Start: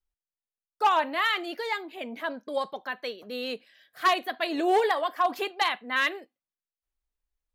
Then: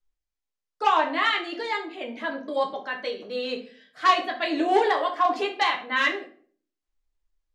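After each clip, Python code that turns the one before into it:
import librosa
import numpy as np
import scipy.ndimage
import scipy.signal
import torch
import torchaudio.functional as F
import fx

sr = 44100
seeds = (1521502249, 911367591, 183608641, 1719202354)

y = scipy.signal.sosfilt(scipy.signal.butter(4, 7900.0, 'lowpass', fs=sr, output='sos'), x)
y = fx.room_shoebox(y, sr, seeds[0], volume_m3=40.0, walls='mixed', distance_m=0.51)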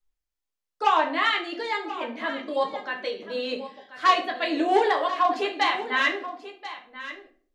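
y = x + 10.0 ** (-14.0 / 20.0) * np.pad(x, (int(1035 * sr / 1000.0), 0))[:len(x)]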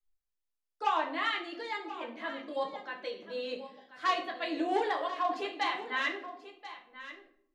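y = fx.room_shoebox(x, sr, seeds[1], volume_m3=2100.0, walls='furnished', distance_m=0.76)
y = F.gain(torch.from_numpy(y), -9.0).numpy()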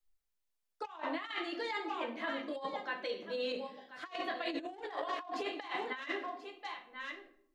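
y = fx.over_compress(x, sr, threshold_db=-36.0, ratio=-0.5)
y = F.gain(torch.from_numpy(y), -1.5).numpy()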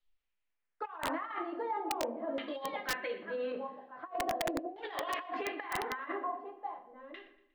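y = fx.filter_lfo_lowpass(x, sr, shape='saw_down', hz=0.42, low_hz=530.0, high_hz=3400.0, q=2.2)
y = fx.echo_thinned(y, sr, ms=119, feedback_pct=46, hz=430.0, wet_db=-17.5)
y = (np.mod(10.0 ** (25.0 / 20.0) * y + 1.0, 2.0) - 1.0) / 10.0 ** (25.0 / 20.0)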